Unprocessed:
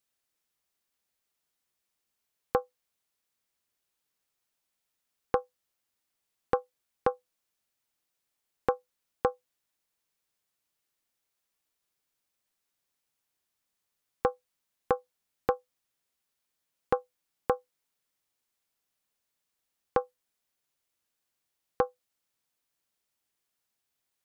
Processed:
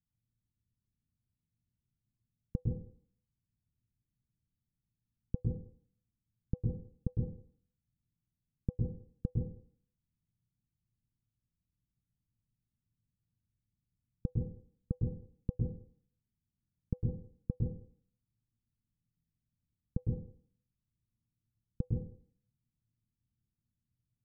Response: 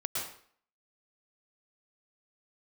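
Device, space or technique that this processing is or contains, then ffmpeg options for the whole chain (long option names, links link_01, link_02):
club heard from the street: -filter_complex "[0:a]alimiter=limit=-12.5dB:level=0:latency=1,lowpass=frequency=180:width=0.5412,lowpass=frequency=180:width=1.3066[link_01];[1:a]atrim=start_sample=2205[link_02];[link_01][link_02]afir=irnorm=-1:irlink=0,volume=14dB"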